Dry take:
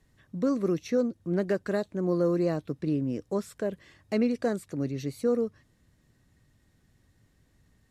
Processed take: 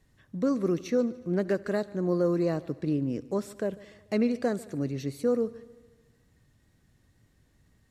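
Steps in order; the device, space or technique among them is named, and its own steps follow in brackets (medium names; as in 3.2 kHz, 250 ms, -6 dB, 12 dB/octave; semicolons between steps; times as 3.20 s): multi-head tape echo (multi-head delay 73 ms, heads first and second, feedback 55%, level -23 dB; wow and flutter 25 cents)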